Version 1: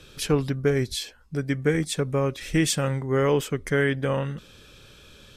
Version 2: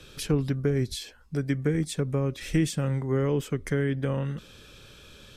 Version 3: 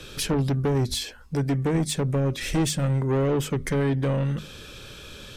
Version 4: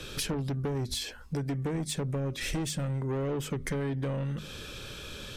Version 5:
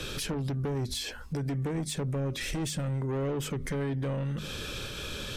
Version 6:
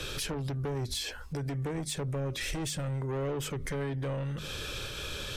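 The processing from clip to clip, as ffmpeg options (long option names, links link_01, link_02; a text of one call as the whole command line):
ffmpeg -i in.wav -filter_complex "[0:a]acrossover=split=360[link_01][link_02];[link_02]acompressor=threshold=-33dB:ratio=6[link_03];[link_01][link_03]amix=inputs=2:normalize=0" out.wav
ffmpeg -i in.wav -af "asoftclip=type=tanh:threshold=-26.5dB,bandreject=frequency=50:width_type=h:width=6,bandreject=frequency=100:width_type=h:width=6,bandreject=frequency=150:width_type=h:width=6,bandreject=frequency=200:width_type=h:width=6,bandreject=frequency=250:width_type=h:width=6,volume=8dB" out.wav
ffmpeg -i in.wav -af "acompressor=threshold=-30dB:ratio=6" out.wav
ffmpeg -i in.wav -af "alimiter=level_in=7.5dB:limit=-24dB:level=0:latency=1:release=88,volume=-7.5dB,volume=5dB" out.wav
ffmpeg -i in.wav -af "equalizer=frequency=220:width=1.6:gain=-7.5" out.wav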